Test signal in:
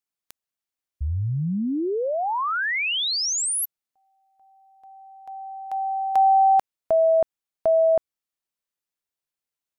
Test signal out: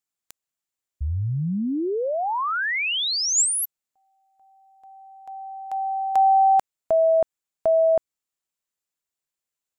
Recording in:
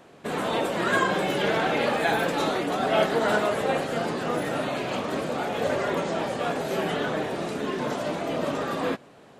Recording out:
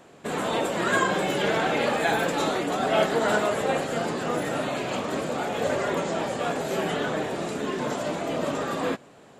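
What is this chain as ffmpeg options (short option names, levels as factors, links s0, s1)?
-af "equalizer=f=7300:w=5.2:g=8"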